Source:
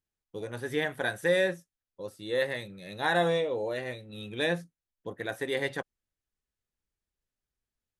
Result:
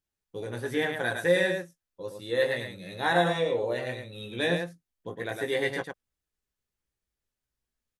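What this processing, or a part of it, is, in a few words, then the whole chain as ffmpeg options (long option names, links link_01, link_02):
slapback doubling: -filter_complex "[0:a]asplit=3[link_01][link_02][link_03];[link_02]adelay=17,volume=-5dB[link_04];[link_03]adelay=109,volume=-5dB[link_05];[link_01][link_04][link_05]amix=inputs=3:normalize=0"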